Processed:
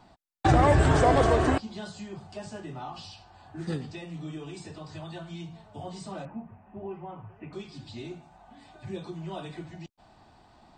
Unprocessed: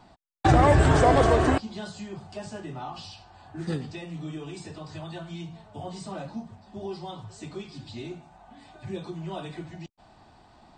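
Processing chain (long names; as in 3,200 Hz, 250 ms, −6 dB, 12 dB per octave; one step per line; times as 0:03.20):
0:06.25–0:07.53: elliptic low-pass filter 2,600 Hz, stop band 40 dB
level −2 dB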